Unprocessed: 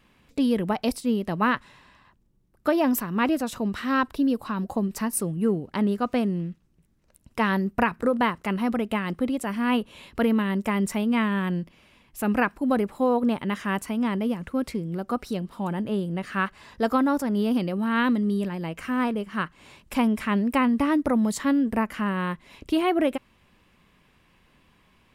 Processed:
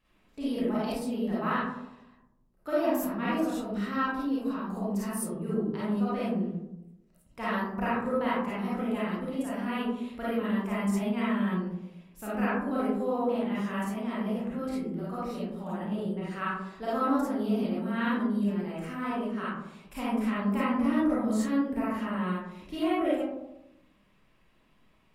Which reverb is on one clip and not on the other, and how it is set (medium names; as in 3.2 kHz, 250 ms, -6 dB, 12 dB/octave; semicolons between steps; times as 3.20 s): algorithmic reverb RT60 0.91 s, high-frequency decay 0.3×, pre-delay 10 ms, DRR -9.5 dB; trim -15.5 dB